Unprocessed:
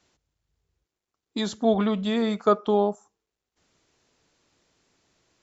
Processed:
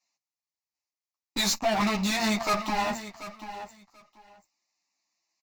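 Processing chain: high-pass 370 Hz 12 dB/octave; treble shelf 3 kHz +8.5 dB; waveshaping leveller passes 5; static phaser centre 2.2 kHz, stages 8; valve stage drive 20 dB, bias 0.4; feedback delay 736 ms, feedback 17%, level -13.5 dB; three-phase chorus; trim +1 dB

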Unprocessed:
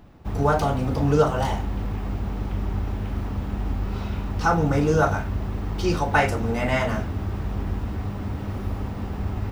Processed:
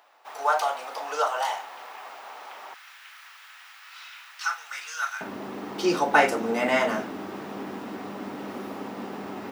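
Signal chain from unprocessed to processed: high-pass 680 Hz 24 dB/octave, from 2.74 s 1.5 kHz, from 5.21 s 240 Hz; trim +1.5 dB

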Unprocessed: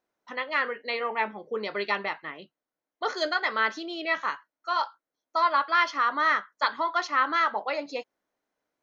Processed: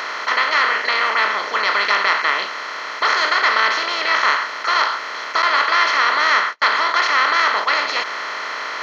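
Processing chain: spectral levelling over time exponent 0.2; 5.42–7.71 s: gate -20 dBFS, range -36 dB; tilt shelf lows -7.5 dB; trim -2.5 dB

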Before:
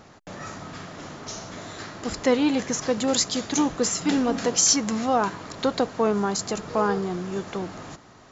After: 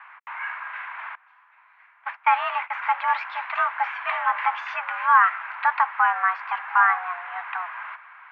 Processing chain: 1.15–2.74 s: gate -28 dBFS, range -22 dB; mistuned SSB +350 Hz 590–2200 Hz; trim +8 dB

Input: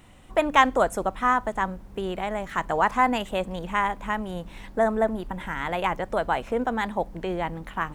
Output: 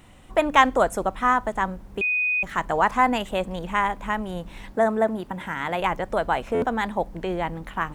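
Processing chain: 2.01–2.43 s: bleep 2.49 kHz -21.5 dBFS; 4.73–5.80 s: high-pass 87 Hz 12 dB/octave; buffer glitch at 6.54 s, samples 512, times 6; trim +1.5 dB

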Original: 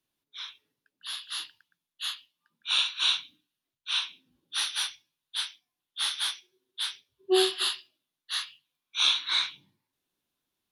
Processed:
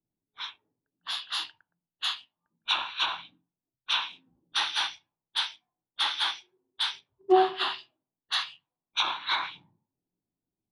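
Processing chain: in parallel at -10.5 dB: companded quantiser 4-bit; on the sum: low-pass that closes with the level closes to 1.4 kHz, closed at -19.5 dBFS; peaking EQ 830 Hz +10 dB 0.76 oct; level-controlled noise filter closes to 310 Hz, open at -29.5 dBFS; on a send at -19.5 dB: bass shelf 220 Hz +11 dB + reverberation RT60 0.20 s, pre-delay 3 ms; on the sum: trim +1.5 dB

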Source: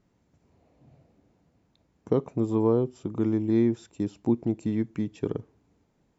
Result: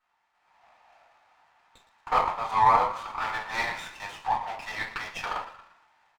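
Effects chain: elliptic high-pass 860 Hz, stop band 60 dB; level rider gain up to 10.5 dB; in parallel at -7 dB: small samples zeroed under -42 dBFS; on the sum: distance through air 230 m; on a send: frequency-shifting echo 115 ms, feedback 43%, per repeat +49 Hz, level -13 dB; on the sum: simulated room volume 150 m³, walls furnished, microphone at 4.4 m; sliding maximum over 5 samples

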